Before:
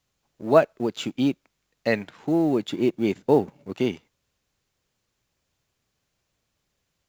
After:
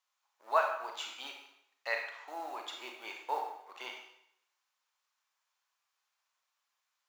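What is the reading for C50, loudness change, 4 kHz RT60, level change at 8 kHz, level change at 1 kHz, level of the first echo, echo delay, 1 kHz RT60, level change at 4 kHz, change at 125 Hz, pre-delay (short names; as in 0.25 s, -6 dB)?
4.0 dB, -13.5 dB, 0.70 s, n/a, -4.0 dB, none, none, 0.70 s, -6.0 dB, under -40 dB, 30 ms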